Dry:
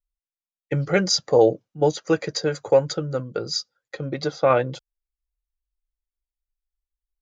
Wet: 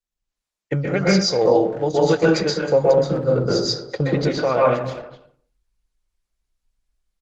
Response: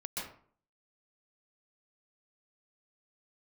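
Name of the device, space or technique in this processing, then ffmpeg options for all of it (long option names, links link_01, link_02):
speakerphone in a meeting room: -filter_complex "[0:a]asplit=3[link_01][link_02][link_03];[link_01]afade=type=out:start_time=2.68:duration=0.02[link_04];[link_02]tiltshelf=frequency=1100:gain=5,afade=type=in:start_time=2.68:duration=0.02,afade=type=out:start_time=4.05:duration=0.02[link_05];[link_03]afade=type=in:start_time=4.05:duration=0.02[link_06];[link_04][link_05][link_06]amix=inputs=3:normalize=0[link_07];[1:a]atrim=start_sample=2205[link_08];[link_07][link_08]afir=irnorm=-1:irlink=0,asplit=2[link_09][link_10];[link_10]adelay=250,highpass=300,lowpass=3400,asoftclip=type=hard:threshold=-13.5dB,volume=-16dB[link_11];[link_09][link_11]amix=inputs=2:normalize=0,dynaudnorm=framelen=110:gausssize=5:maxgain=15.5dB,volume=-3.5dB" -ar 48000 -c:a libopus -b:a 16k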